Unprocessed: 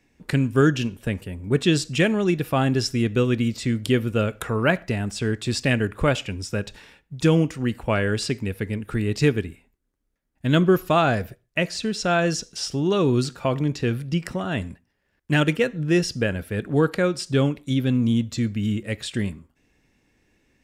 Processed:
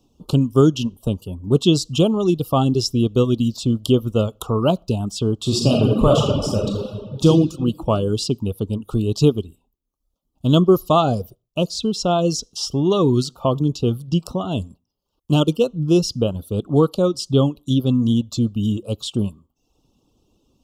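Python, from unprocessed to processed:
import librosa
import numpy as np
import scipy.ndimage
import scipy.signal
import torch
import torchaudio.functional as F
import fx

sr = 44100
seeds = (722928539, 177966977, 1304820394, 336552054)

y = fx.reverb_throw(x, sr, start_s=5.35, length_s=1.91, rt60_s=1.9, drr_db=-3.0)
y = scipy.signal.sosfilt(scipy.signal.ellip(3, 1.0, 80, [1200.0, 3000.0], 'bandstop', fs=sr, output='sos'), y)
y = fx.dereverb_blind(y, sr, rt60_s=0.65)
y = fx.peak_eq(y, sr, hz=8700.0, db=-5.0, octaves=0.36)
y = F.gain(torch.from_numpy(y), 5.0).numpy()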